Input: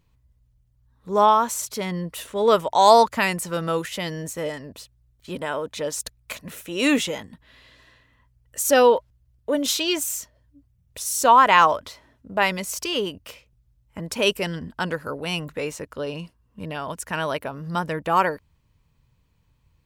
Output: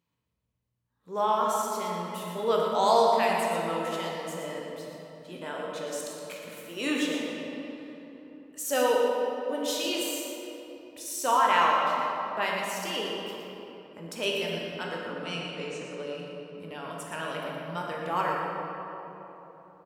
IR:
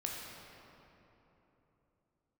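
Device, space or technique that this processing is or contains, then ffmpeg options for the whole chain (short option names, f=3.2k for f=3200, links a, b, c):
PA in a hall: -filter_complex "[0:a]asettb=1/sr,asplit=3[a][b][c];[a]atrim=end=14.954[d];[b]atrim=start=14.95:end=15.99,asetpts=PTS-STARTPTS,afade=t=in:d=0.004:c=qsin,afade=t=out:st=1.036:d=0.004:c=qsin,lowpass=f=8.6k:w=0.5412,lowpass=f=8.6k:w=1.3066[e];[c]atrim=start=15.986[f];[d][e]acrossfade=d=0.004:c1=hsin:c2=qsin[g];[g][f]acrossfade=d=0.004:c1=qsin:c2=hsin,highpass=190,equalizer=f=3k:t=o:w=0.23:g=3,aecho=1:1:118:0.376[h];[1:a]atrim=start_sample=2205[i];[h][i]afir=irnorm=-1:irlink=0,volume=-8.5dB"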